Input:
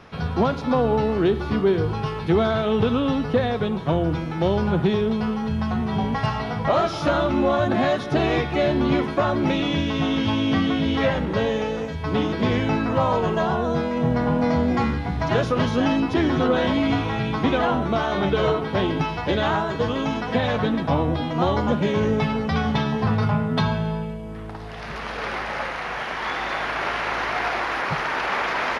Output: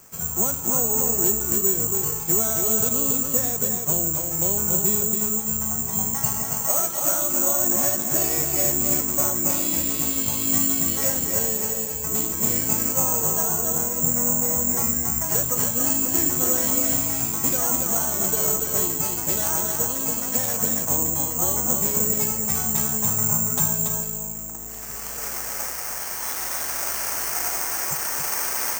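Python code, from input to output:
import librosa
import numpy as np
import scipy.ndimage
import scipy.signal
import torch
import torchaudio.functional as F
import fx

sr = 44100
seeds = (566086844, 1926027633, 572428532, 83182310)

y = x + 10.0 ** (-4.5 / 20.0) * np.pad(x, (int(280 * sr / 1000.0), 0))[:len(x)]
y = (np.kron(scipy.signal.resample_poly(y, 1, 6), np.eye(6)[0]) * 6)[:len(y)]
y = fx.highpass(y, sr, hz=200.0, slope=6, at=(6.57, 7.75))
y = y * 10.0 ** (-10.0 / 20.0)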